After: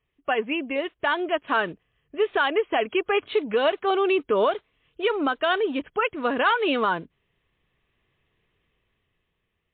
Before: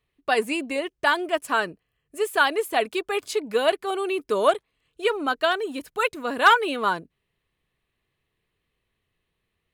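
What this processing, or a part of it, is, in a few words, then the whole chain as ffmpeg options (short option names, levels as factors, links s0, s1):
low-bitrate web radio: -af "dynaudnorm=f=320:g=9:m=3.16,alimiter=limit=0.237:level=0:latency=1:release=156" -ar 8000 -c:a libmp3lame -b:a 32k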